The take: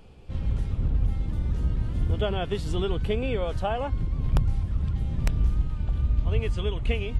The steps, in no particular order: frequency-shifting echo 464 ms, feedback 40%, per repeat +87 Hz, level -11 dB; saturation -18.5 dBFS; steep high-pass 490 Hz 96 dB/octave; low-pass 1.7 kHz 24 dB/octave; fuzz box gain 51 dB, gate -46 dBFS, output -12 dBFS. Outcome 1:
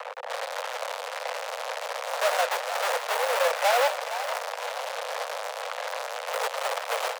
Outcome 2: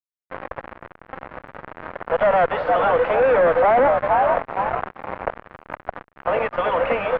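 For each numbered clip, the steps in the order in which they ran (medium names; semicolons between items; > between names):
low-pass > fuzz box > saturation > steep high-pass > frequency-shifting echo; saturation > frequency-shifting echo > steep high-pass > fuzz box > low-pass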